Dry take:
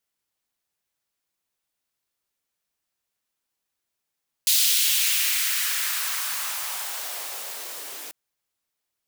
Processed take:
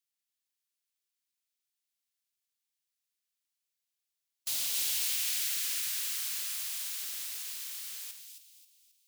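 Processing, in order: spectral levelling over time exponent 0.6; amplifier tone stack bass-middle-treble 6-0-2; waveshaping leveller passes 2; 4.95–7.01 s: bass shelf 430 Hz -7 dB; two-band feedback delay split 2.6 kHz, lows 82 ms, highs 268 ms, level -4.5 dB; upward expansion 1.5:1, over -47 dBFS; trim -4.5 dB

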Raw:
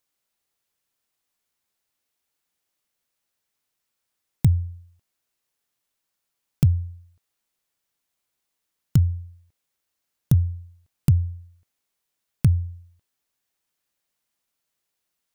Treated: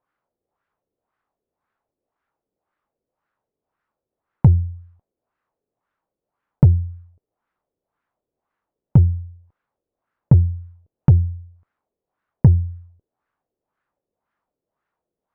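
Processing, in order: LFO low-pass sine 1.9 Hz 430–1500 Hz; Chebyshev shaper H 8 -28 dB, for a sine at -6 dBFS; trim +5.5 dB

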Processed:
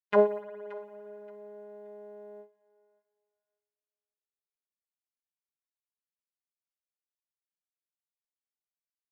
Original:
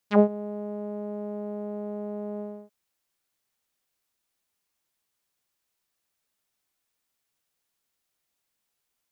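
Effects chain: gate -31 dBFS, range -44 dB; high-pass 440 Hz 6 dB/octave; comb 2 ms, depth 64%; thinning echo 576 ms, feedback 25%, high-pass 910 Hz, level -17.5 dB; spring tank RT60 2.5 s, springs 55 ms, chirp 20 ms, DRR 15 dB

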